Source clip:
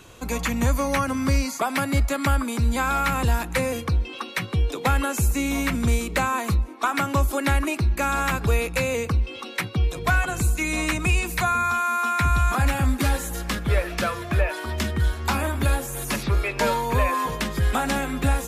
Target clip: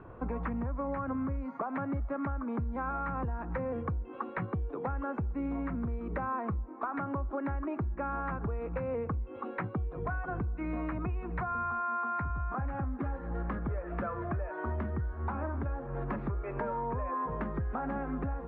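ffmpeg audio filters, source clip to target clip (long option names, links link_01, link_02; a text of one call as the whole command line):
ffmpeg -i in.wav -af "lowpass=frequency=1400:width=0.5412,lowpass=frequency=1400:width=1.3066,alimiter=limit=-20.5dB:level=0:latency=1:release=287,acompressor=threshold=-31dB:ratio=6" out.wav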